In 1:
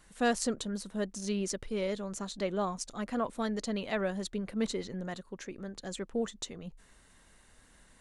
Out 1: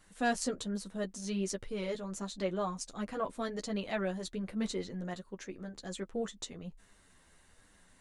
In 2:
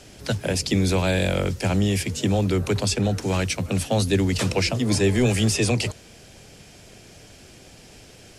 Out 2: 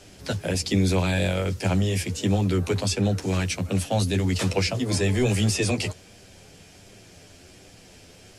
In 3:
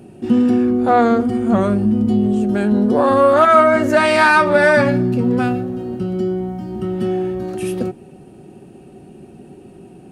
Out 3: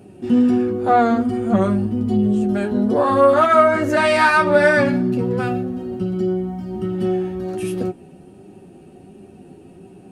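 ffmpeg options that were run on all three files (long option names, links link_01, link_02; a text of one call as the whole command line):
ffmpeg -i in.wav -af "flanger=delay=9.9:depth=2.1:regen=-13:speed=1.3:shape=triangular,volume=1dB" out.wav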